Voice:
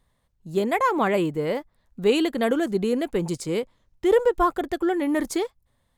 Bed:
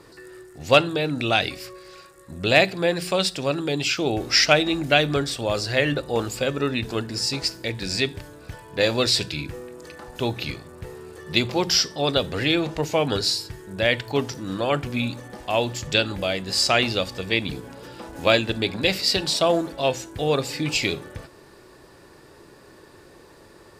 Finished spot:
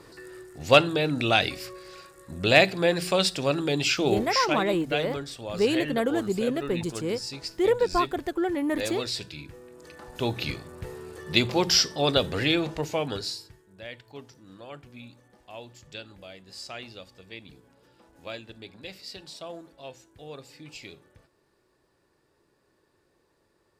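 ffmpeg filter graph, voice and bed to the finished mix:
-filter_complex "[0:a]adelay=3550,volume=0.668[s0];[1:a]volume=2.82,afade=t=out:st=4.1:d=0.29:silence=0.316228,afade=t=in:st=9.6:d=0.87:silence=0.316228,afade=t=out:st=12.25:d=1.4:silence=0.112202[s1];[s0][s1]amix=inputs=2:normalize=0"

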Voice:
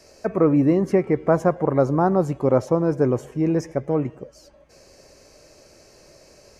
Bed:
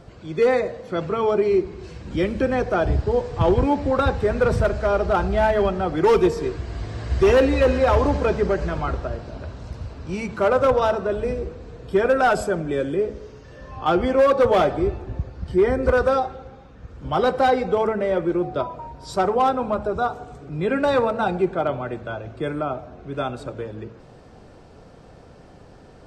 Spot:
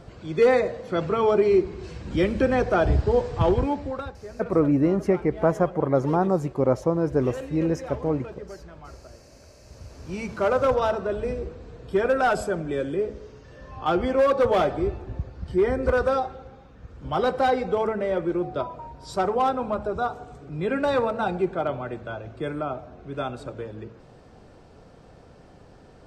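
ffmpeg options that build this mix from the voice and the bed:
-filter_complex "[0:a]adelay=4150,volume=0.708[s0];[1:a]volume=5.96,afade=t=out:st=3.22:d=0.9:silence=0.112202,afade=t=in:st=9.61:d=0.63:silence=0.16788[s1];[s0][s1]amix=inputs=2:normalize=0"

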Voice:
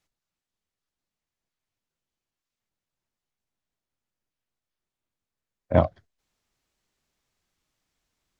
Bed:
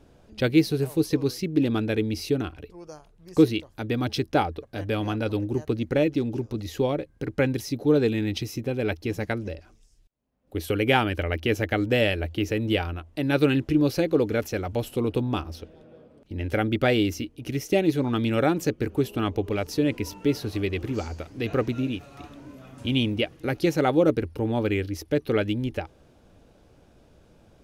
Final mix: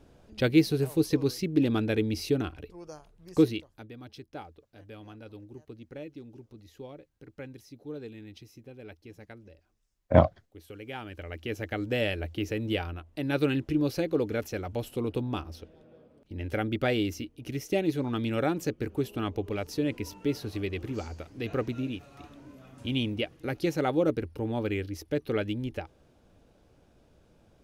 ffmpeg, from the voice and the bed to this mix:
-filter_complex "[0:a]adelay=4400,volume=1.06[s0];[1:a]volume=3.98,afade=t=out:st=3.25:d=0.66:silence=0.133352,afade=t=in:st=10.92:d=1.23:silence=0.199526[s1];[s0][s1]amix=inputs=2:normalize=0"

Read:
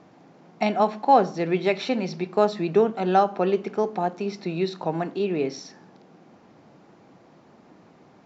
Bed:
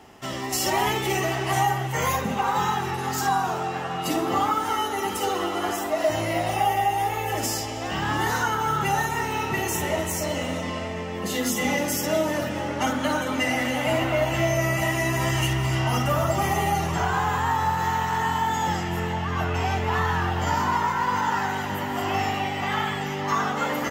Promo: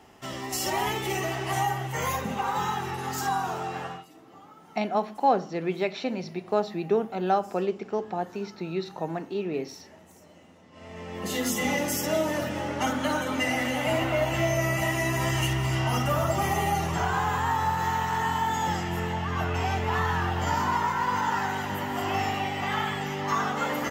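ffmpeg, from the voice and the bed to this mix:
-filter_complex "[0:a]adelay=4150,volume=0.562[s0];[1:a]volume=11.9,afade=t=out:st=3.85:d=0.21:silence=0.0630957,afade=t=in:st=10.71:d=0.62:silence=0.0501187[s1];[s0][s1]amix=inputs=2:normalize=0"

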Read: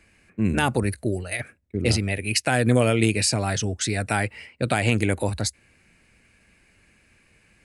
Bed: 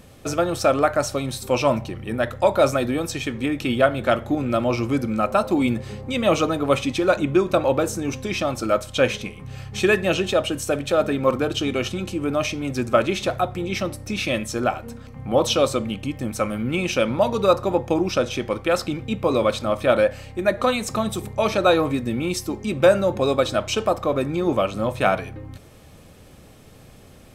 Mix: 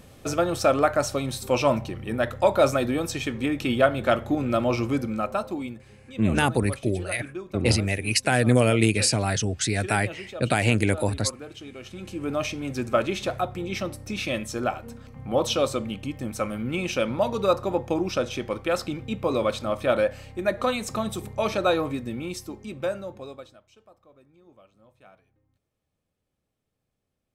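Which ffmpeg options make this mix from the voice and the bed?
-filter_complex "[0:a]adelay=5800,volume=1[s0];[1:a]volume=3.55,afade=t=out:st=4.8:d=0.98:silence=0.16788,afade=t=in:st=11.82:d=0.5:silence=0.223872,afade=t=out:st=21.51:d=2.09:silence=0.0334965[s1];[s0][s1]amix=inputs=2:normalize=0"

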